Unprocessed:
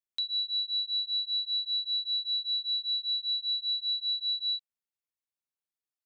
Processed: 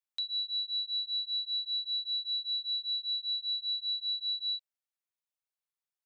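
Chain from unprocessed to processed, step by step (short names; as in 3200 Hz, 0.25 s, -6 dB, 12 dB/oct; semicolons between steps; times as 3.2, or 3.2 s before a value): elliptic high-pass 530 Hz; gain -2 dB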